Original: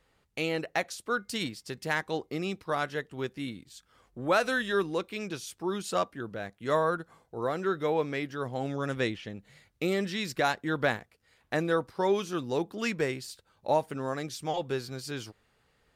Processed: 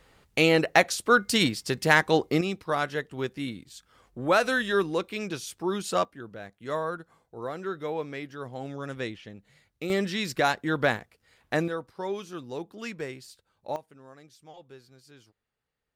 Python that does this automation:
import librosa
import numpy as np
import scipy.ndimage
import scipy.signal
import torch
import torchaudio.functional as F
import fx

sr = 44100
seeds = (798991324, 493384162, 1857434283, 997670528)

y = fx.gain(x, sr, db=fx.steps((0.0, 10.0), (2.41, 3.0), (6.05, -4.0), (9.9, 3.0), (11.68, -6.0), (13.76, -17.0)))